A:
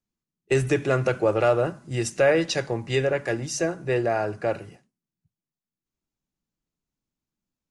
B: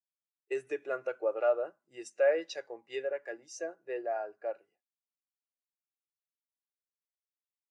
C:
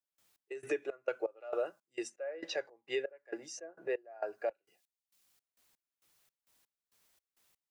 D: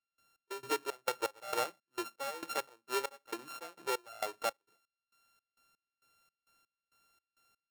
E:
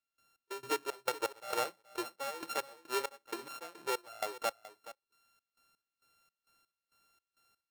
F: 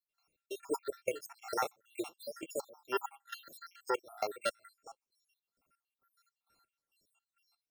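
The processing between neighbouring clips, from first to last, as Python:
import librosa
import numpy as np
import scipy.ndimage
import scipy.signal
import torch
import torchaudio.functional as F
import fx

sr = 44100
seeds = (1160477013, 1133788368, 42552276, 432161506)

y1 = scipy.signal.sosfilt(scipy.signal.butter(2, 480.0, 'highpass', fs=sr, output='sos'), x)
y1 = fx.spectral_expand(y1, sr, expansion=1.5)
y1 = y1 * librosa.db_to_amplitude(-6.0)
y2 = fx.step_gate(y1, sr, bpm=167, pattern='..xx...xxx', floor_db=-24.0, edge_ms=4.5)
y2 = fx.band_squash(y2, sr, depth_pct=70)
y2 = y2 * librosa.db_to_amplitude(3.0)
y3 = np.r_[np.sort(y2[:len(y2) // 32 * 32].reshape(-1, 32), axis=1).ravel(), y2[len(y2) // 32 * 32:]]
y4 = y3 + 10.0 ** (-15.5 / 20.0) * np.pad(y3, (int(424 * sr / 1000.0), 0))[:len(y3)]
y5 = fx.spec_dropout(y4, sr, seeds[0], share_pct=76)
y5 = y5 * librosa.db_to_amplitude(3.5)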